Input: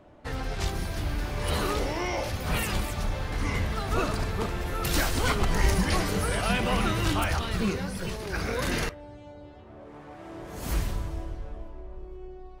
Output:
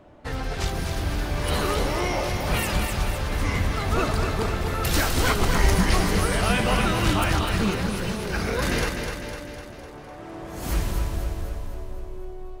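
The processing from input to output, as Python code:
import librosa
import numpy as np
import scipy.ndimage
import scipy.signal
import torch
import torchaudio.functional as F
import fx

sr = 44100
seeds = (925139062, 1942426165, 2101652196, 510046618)

y = fx.echo_feedback(x, sr, ms=252, feedback_pct=57, wet_db=-6.0)
y = y * librosa.db_to_amplitude(3.0)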